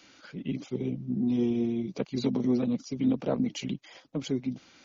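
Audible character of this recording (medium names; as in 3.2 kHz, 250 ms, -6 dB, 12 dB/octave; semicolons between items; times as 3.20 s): noise floor -58 dBFS; spectral tilt -7.0 dB/octave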